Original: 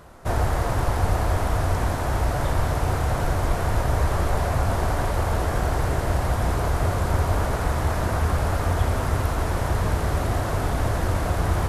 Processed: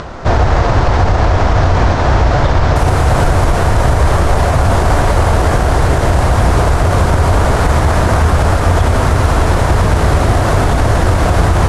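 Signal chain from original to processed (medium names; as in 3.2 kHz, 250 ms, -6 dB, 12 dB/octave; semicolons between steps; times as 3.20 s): tracing distortion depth 0.2 ms; upward compressor, threshold -33 dBFS; low-pass 6 kHz 24 dB/octave, from 2.76 s 11 kHz; loudness maximiser +15 dB; trim -1 dB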